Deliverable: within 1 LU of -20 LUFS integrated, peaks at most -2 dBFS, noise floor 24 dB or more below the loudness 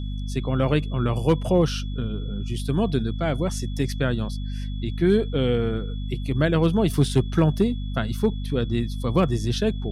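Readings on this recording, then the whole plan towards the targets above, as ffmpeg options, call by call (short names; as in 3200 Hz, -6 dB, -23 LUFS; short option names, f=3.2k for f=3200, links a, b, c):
hum 50 Hz; harmonics up to 250 Hz; hum level -26 dBFS; steady tone 3400 Hz; tone level -46 dBFS; loudness -24.0 LUFS; peak -7.0 dBFS; loudness target -20.0 LUFS
-> -af "bandreject=f=50:t=h:w=4,bandreject=f=100:t=h:w=4,bandreject=f=150:t=h:w=4,bandreject=f=200:t=h:w=4,bandreject=f=250:t=h:w=4"
-af "bandreject=f=3.4k:w=30"
-af "volume=4dB"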